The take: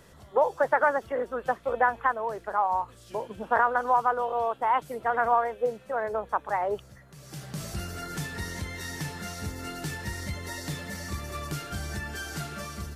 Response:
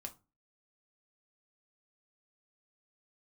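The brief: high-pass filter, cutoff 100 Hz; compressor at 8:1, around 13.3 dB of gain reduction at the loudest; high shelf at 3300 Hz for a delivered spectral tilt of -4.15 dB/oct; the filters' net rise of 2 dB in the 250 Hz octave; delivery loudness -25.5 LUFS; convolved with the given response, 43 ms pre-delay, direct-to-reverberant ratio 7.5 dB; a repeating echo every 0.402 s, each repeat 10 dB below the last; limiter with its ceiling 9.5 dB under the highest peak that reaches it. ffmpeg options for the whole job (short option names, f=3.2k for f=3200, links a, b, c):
-filter_complex "[0:a]highpass=100,equalizer=f=250:t=o:g=3,highshelf=f=3.3k:g=5,acompressor=threshold=-31dB:ratio=8,alimiter=level_in=4dB:limit=-24dB:level=0:latency=1,volume=-4dB,aecho=1:1:402|804|1206|1608:0.316|0.101|0.0324|0.0104,asplit=2[a][b];[1:a]atrim=start_sample=2205,adelay=43[c];[b][c]afir=irnorm=-1:irlink=0,volume=-3.5dB[d];[a][d]amix=inputs=2:normalize=0,volume=11.5dB"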